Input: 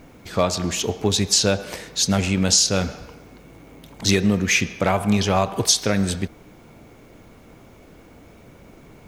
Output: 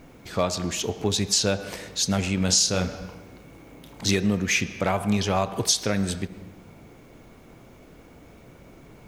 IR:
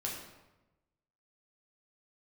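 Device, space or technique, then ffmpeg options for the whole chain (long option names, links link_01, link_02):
ducked reverb: -filter_complex "[0:a]asplit=3[link_01][link_02][link_03];[1:a]atrim=start_sample=2205[link_04];[link_02][link_04]afir=irnorm=-1:irlink=0[link_05];[link_03]apad=whole_len=400071[link_06];[link_05][link_06]sidechaincompress=threshold=-33dB:ratio=8:attack=7.7:release=100,volume=-9dB[link_07];[link_01][link_07]amix=inputs=2:normalize=0,asettb=1/sr,asplit=3[link_08][link_09][link_10];[link_08]atrim=end=2.374[link_11];[link_09]atrim=start=2.37:end=4.11,asetpts=PTS-STARTPTS,afade=type=in:duration=0.004:curve=qsin,afade=type=out:start_time=1.736:duration=0.004:curve=qsin,asplit=2[link_12][link_13];[link_13]adelay=33,volume=-8dB[link_14];[link_12][link_14]amix=inputs=2:normalize=0,atrim=end_sample=76734[link_15];[link_10]atrim=start=4.106[link_16];[link_11][link_15]acrossfade=duration=0.004:curve1=hsin:curve2=qsin[link_17];[link_17][link_16]acrossfade=duration=0.004:curve1=qsin:curve2=hsin,volume=-4.5dB"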